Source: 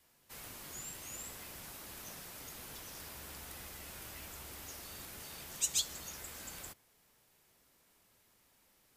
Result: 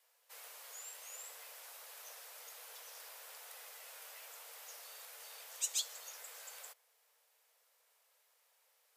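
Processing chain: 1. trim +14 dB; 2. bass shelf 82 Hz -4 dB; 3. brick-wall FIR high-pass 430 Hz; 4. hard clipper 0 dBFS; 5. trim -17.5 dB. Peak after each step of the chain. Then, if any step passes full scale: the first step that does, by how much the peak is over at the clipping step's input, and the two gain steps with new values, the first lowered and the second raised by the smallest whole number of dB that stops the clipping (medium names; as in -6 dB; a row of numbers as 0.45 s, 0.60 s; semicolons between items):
-3.5 dBFS, -3.5 dBFS, -3.5 dBFS, -3.5 dBFS, -21.0 dBFS; nothing clips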